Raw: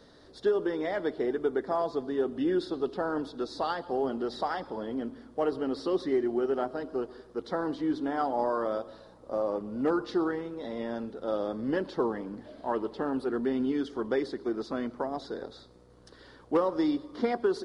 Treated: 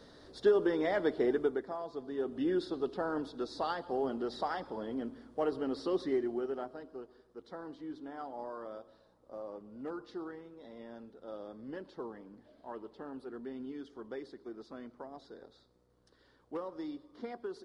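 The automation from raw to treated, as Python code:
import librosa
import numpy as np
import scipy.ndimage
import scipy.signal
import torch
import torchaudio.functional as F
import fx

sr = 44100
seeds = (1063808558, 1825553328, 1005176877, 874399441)

y = fx.gain(x, sr, db=fx.line((1.38, 0.0), (1.79, -12.0), (2.42, -4.0), (6.1, -4.0), (7.03, -14.0)))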